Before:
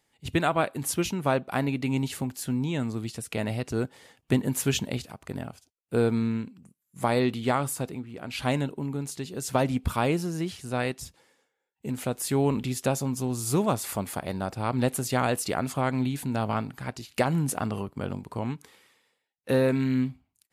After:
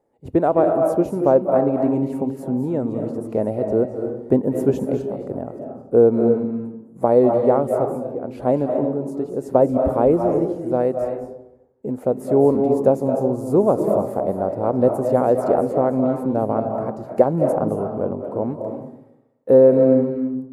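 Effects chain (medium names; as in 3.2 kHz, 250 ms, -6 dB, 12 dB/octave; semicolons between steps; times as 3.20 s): FFT filter 140 Hz 0 dB, 530 Hz +14 dB, 3.1 kHz -22 dB, 11 kHz -14 dB; reverberation RT60 0.85 s, pre-delay 177 ms, DRR 4 dB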